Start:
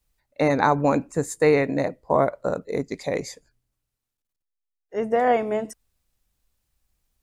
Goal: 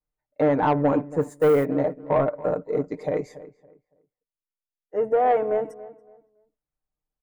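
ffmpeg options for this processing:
ffmpeg -i in.wav -filter_complex "[0:a]agate=range=-12dB:threshold=-49dB:ratio=16:detection=peak,asplit=2[link_01][link_02];[link_02]highpass=frequency=720:poles=1,volume=12dB,asoftclip=type=tanh:threshold=-3.5dB[link_03];[link_01][link_03]amix=inputs=2:normalize=0,lowpass=frequency=1100:poles=1,volume=-6dB,aecho=1:1:6.6:0.58,asplit=3[link_04][link_05][link_06];[link_04]afade=type=out:start_time=1.21:duration=0.02[link_07];[link_05]acrusher=bits=5:mode=log:mix=0:aa=0.000001,afade=type=in:start_time=1.21:duration=0.02,afade=type=out:start_time=1.64:duration=0.02[link_08];[link_06]afade=type=in:start_time=1.64:duration=0.02[link_09];[link_07][link_08][link_09]amix=inputs=3:normalize=0,equalizer=frequency=4300:width_type=o:width=2.9:gain=-12.5,asoftclip=type=tanh:threshold=-12.5dB,asplit=2[link_10][link_11];[link_11]adelay=281,lowpass=frequency=1900:poles=1,volume=-17dB,asplit=2[link_12][link_13];[link_13]adelay=281,lowpass=frequency=1900:poles=1,volume=0.27,asplit=2[link_14][link_15];[link_15]adelay=281,lowpass=frequency=1900:poles=1,volume=0.27[link_16];[link_12][link_14][link_16]amix=inputs=3:normalize=0[link_17];[link_10][link_17]amix=inputs=2:normalize=0" out.wav

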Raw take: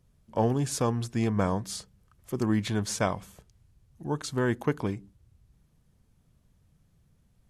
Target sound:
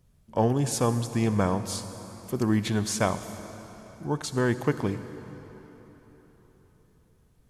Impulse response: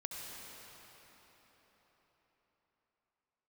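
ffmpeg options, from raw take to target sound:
-filter_complex "[0:a]asplit=2[link_01][link_02];[1:a]atrim=start_sample=2205,asetrate=48510,aresample=44100,highshelf=frequency=8600:gain=11[link_03];[link_02][link_03]afir=irnorm=-1:irlink=0,volume=-7dB[link_04];[link_01][link_04]amix=inputs=2:normalize=0"

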